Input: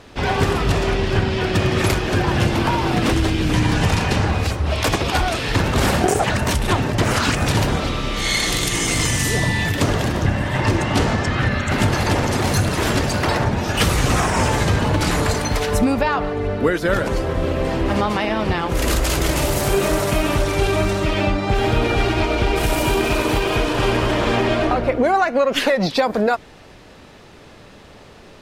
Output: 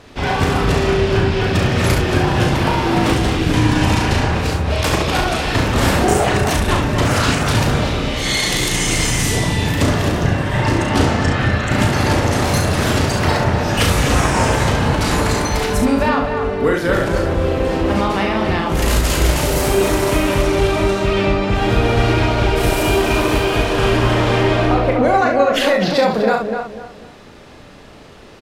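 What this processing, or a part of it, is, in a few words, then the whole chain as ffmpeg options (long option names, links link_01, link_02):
slapback doubling: -filter_complex "[0:a]asplit=3[link_01][link_02][link_03];[link_02]adelay=36,volume=-5dB[link_04];[link_03]adelay=69,volume=-6.5dB[link_05];[link_01][link_04][link_05]amix=inputs=3:normalize=0,asettb=1/sr,asplit=3[link_06][link_07][link_08];[link_06]atrim=end=20.474[link_09];[link_07]atrim=start=20.47:end=21.7,asetpts=PTS-STARTPTS,afade=type=in:duration=0.004:curve=qsin,afade=type=out:start_time=1.226:duration=0.004:curve=qsin,highshelf=frequency=7900:gain=-5[link_10];[link_08]atrim=start=21.696[link_11];[link_09][link_10]acrossfade=duration=0.004:curve1=hsin:curve2=qsin[link_12];[link_12][link_11]acrossfade=duration=0.004:curve1=qsin:curve2=hsin,asplit=2[link_13][link_14];[link_14]adelay=249,lowpass=frequency=2100:poles=1,volume=-5.5dB,asplit=2[link_15][link_16];[link_16]adelay=249,lowpass=frequency=2100:poles=1,volume=0.31,asplit=2[link_17][link_18];[link_18]adelay=249,lowpass=frequency=2100:poles=1,volume=0.31,asplit=2[link_19][link_20];[link_20]adelay=249,lowpass=frequency=2100:poles=1,volume=0.31[link_21];[link_13][link_15][link_17][link_19][link_21]amix=inputs=5:normalize=0"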